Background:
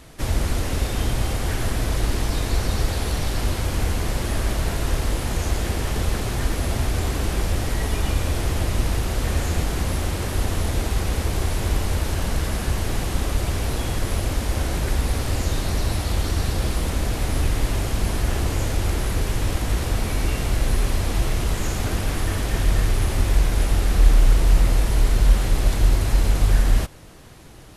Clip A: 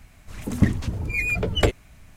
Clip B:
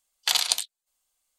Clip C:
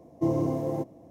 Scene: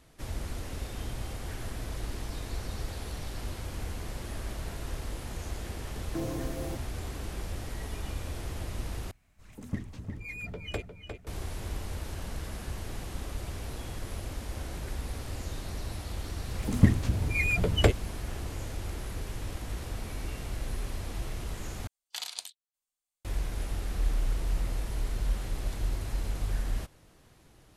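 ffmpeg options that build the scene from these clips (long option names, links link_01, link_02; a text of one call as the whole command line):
ffmpeg -i bed.wav -i cue0.wav -i cue1.wav -i cue2.wav -filter_complex "[1:a]asplit=2[link_01][link_02];[0:a]volume=-14dB[link_03];[3:a]aexciter=amount=5:drive=3.8:freq=4700[link_04];[link_01]asplit=2[link_05][link_06];[link_06]adelay=354,lowpass=frequency=4700:poles=1,volume=-6.5dB,asplit=2[link_07][link_08];[link_08]adelay=354,lowpass=frequency=4700:poles=1,volume=0.38,asplit=2[link_09][link_10];[link_10]adelay=354,lowpass=frequency=4700:poles=1,volume=0.38,asplit=2[link_11][link_12];[link_12]adelay=354,lowpass=frequency=4700:poles=1,volume=0.38[link_13];[link_05][link_07][link_09][link_11][link_13]amix=inputs=5:normalize=0[link_14];[link_02]equalizer=frequency=92:width_type=o:width=1.7:gain=4[link_15];[link_03]asplit=3[link_16][link_17][link_18];[link_16]atrim=end=9.114[link_19];[link_14]atrim=end=2.16,asetpts=PTS-STARTPTS,volume=-16dB[link_20];[link_17]atrim=start=11.266:end=21.874[link_21];[2:a]atrim=end=1.38,asetpts=PTS-STARTPTS,volume=-15dB[link_22];[link_18]atrim=start=23.246[link_23];[link_04]atrim=end=1.1,asetpts=PTS-STARTPTS,volume=-9.5dB,afade=type=in:duration=0.004:curve=hsin,afade=type=out:start_time=1.096:duration=0.004:curve=hsin,adelay=261513S[link_24];[link_15]atrim=end=2.16,asetpts=PTS-STARTPTS,volume=-4dB,afade=type=in:duration=0.004:curve=hsin,afade=type=out:start_time=2.156:duration=0.004:curve=hsin,adelay=16210[link_25];[link_19][link_20]acrossfade=duration=0.004:curve1=hsin:curve2=hsin[link_26];[link_26][link_21]acrossfade=duration=0.004:curve1=hsin:curve2=hsin[link_27];[link_27][link_22]acrossfade=duration=0.004:curve1=hsin:curve2=hsin[link_28];[link_28][link_23]acrossfade=duration=0.004:curve1=hsin:curve2=hsin[link_29];[link_29][link_24][link_25]amix=inputs=3:normalize=0" out.wav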